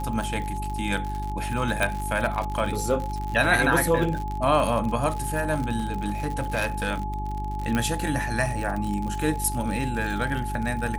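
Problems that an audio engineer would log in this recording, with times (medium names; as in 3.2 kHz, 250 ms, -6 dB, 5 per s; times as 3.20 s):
crackle 76 per s -29 dBFS
hum 50 Hz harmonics 8 -31 dBFS
whine 850 Hz -32 dBFS
1.83 s: pop -10 dBFS
5.78–6.89 s: clipped -20.5 dBFS
7.75 s: pop -12 dBFS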